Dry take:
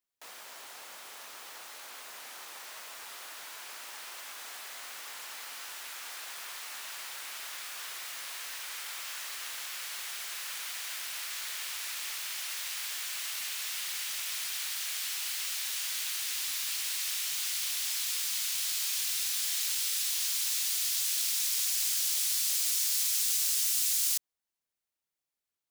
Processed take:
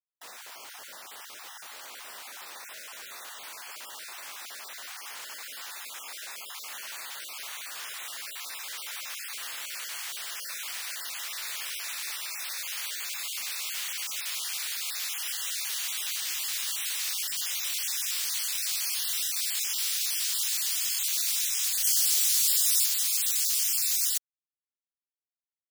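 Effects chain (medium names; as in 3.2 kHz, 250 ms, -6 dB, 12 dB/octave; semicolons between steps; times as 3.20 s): random holes in the spectrogram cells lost 21%; 21.84–22.86 s: tone controls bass +10 dB, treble +4 dB; word length cut 12-bit, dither none; 16.66–17.66 s: bass shelf 200 Hz +7 dB; trim +3 dB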